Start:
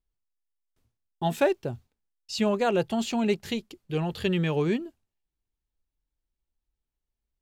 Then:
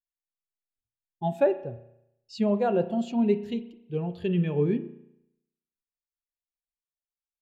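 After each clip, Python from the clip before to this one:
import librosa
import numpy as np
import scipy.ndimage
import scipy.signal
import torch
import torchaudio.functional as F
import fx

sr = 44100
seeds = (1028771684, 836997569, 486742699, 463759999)

y = fx.rev_spring(x, sr, rt60_s=1.2, pass_ms=(34,), chirp_ms=30, drr_db=7.5)
y = fx.spectral_expand(y, sr, expansion=1.5)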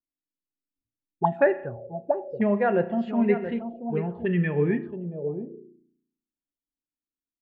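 y = x + 10.0 ** (-11.0 / 20.0) * np.pad(x, (int(679 * sr / 1000.0), 0))[:len(x)]
y = fx.envelope_lowpass(y, sr, base_hz=290.0, top_hz=1900.0, q=6.7, full_db=-24.5, direction='up')
y = y * librosa.db_to_amplitude(1.0)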